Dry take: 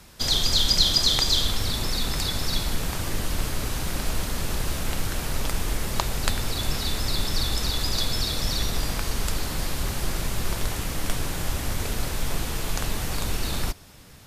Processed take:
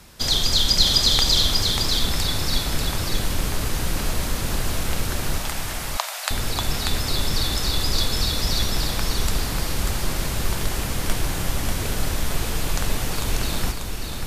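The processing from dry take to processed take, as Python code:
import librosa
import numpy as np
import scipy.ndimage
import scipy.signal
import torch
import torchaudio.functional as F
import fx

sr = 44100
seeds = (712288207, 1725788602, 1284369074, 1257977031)

y = fx.ellip_highpass(x, sr, hz=630.0, order=4, stop_db=60, at=(5.38, 6.31))
y = y + 10.0 ** (-4.5 / 20.0) * np.pad(y, (int(590 * sr / 1000.0), 0))[:len(y)]
y = y * 10.0 ** (2.0 / 20.0)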